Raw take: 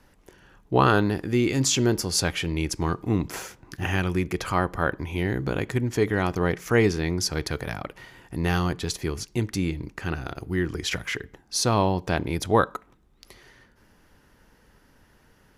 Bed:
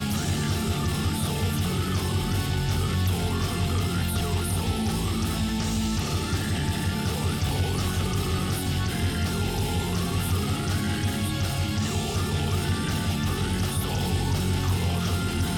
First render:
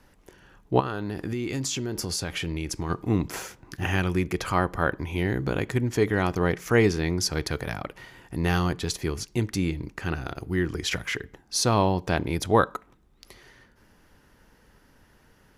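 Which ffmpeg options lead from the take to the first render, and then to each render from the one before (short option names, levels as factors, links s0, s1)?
-filter_complex "[0:a]asplit=3[s0][s1][s2];[s0]afade=t=out:st=0.79:d=0.02[s3];[s1]acompressor=threshold=0.0562:ratio=16:attack=3.2:release=140:knee=1:detection=peak,afade=t=in:st=0.79:d=0.02,afade=t=out:st=2.89:d=0.02[s4];[s2]afade=t=in:st=2.89:d=0.02[s5];[s3][s4][s5]amix=inputs=3:normalize=0"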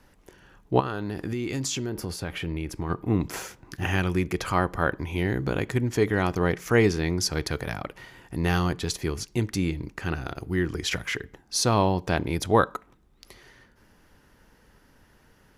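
-filter_complex "[0:a]asettb=1/sr,asplit=3[s0][s1][s2];[s0]atrim=end=1.894[s3];[s1]atrim=start=1.89:end=3.21,asetpts=PTS-STARTPTS,afade=t=in:d=0.004:c=qsin,afade=t=out:st=1.316:d=0.004:c=qsin,equalizer=f=6400:w=0.74:g=-10.5[s4];[s2]atrim=start=3.206[s5];[s3][s4]acrossfade=d=0.004:c1=hsin:c2=qsin[s6];[s6][s5]acrossfade=d=0.004:c1=qsin:c2=hsin"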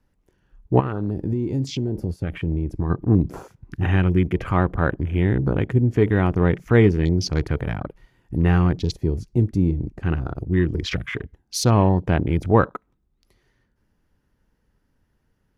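-af "afwtdn=0.0178,lowshelf=f=310:g=10"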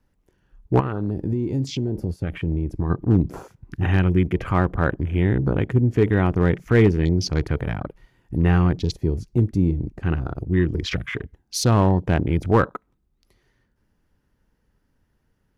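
-af "volume=2.51,asoftclip=hard,volume=0.398"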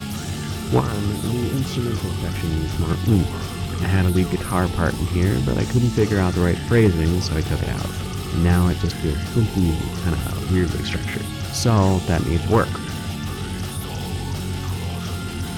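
-filter_complex "[1:a]volume=0.841[s0];[0:a][s0]amix=inputs=2:normalize=0"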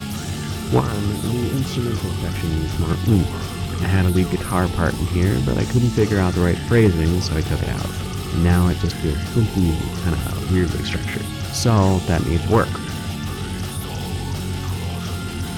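-af "volume=1.12"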